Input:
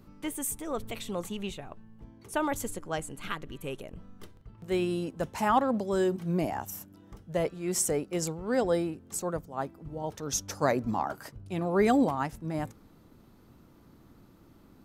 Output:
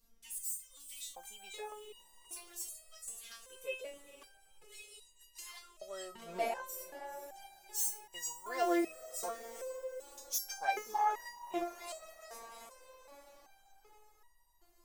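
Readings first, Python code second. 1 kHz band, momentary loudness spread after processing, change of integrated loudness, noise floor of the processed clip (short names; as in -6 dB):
-6.5 dB, 20 LU, -9.0 dB, -67 dBFS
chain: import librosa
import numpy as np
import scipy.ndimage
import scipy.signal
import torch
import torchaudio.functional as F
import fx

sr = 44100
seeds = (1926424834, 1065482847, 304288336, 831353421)

y = fx.self_delay(x, sr, depth_ms=0.1)
y = scipy.signal.sosfilt(scipy.signal.butter(2, 170.0, 'highpass', fs=sr, output='sos'), y)
y = fx.peak_eq(y, sr, hz=260.0, db=-12.0, octaves=0.78)
y = fx.filter_lfo_highpass(y, sr, shape='square', hz=0.43, low_hz=360.0, high_hz=5500.0, q=0.88)
y = fx.echo_diffused(y, sr, ms=478, feedback_pct=61, wet_db=-14.0)
y = fx.dmg_noise_colour(y, sr, seeds[0], colour='brown', level_db=-70.0)
y = fx.resonator_held(y, sr, hz=2.6, low_hz=230.0, high_hz=960.0)
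y = y * librosa.db_to_amplitude(14.5)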